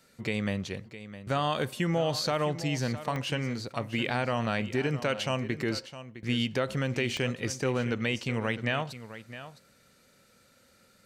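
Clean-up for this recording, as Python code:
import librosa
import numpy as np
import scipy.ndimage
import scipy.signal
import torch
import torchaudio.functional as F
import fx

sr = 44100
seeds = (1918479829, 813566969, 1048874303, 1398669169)

y = fx.fix_declick_ar(x, sr, threshold=10.0)
y = fx.fix_echo_inverse(y, sr, delay_ms=660, level_db=-13.5)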